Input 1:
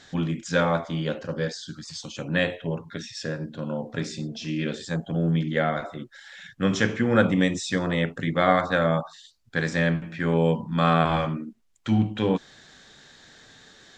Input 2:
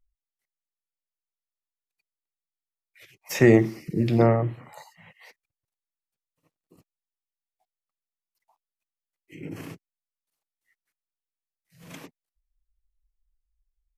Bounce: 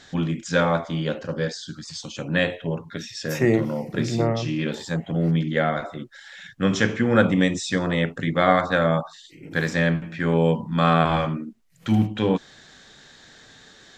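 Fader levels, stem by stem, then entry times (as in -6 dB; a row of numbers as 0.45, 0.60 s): +2.0, -3.5 dB; 0.00, 0.00 s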